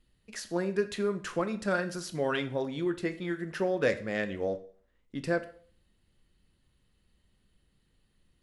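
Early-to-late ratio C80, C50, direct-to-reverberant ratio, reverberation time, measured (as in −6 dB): 18.5 dB, 14.5 dB, 9.0 dB, 0.50 s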